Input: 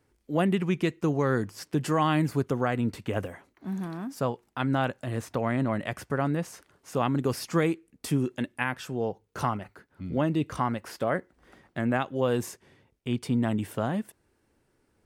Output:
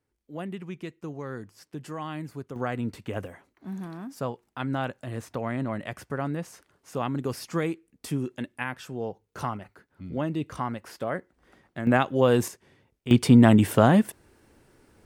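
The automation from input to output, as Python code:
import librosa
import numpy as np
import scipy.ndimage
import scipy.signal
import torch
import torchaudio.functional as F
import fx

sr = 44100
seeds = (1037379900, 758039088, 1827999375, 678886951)

y = fx.gain(x, sr, db=fx.steps((0.0, -11.0), (2.56, -3.0), (11.87, 5.5), (12.48, -1.0), (13.11, 11.0)))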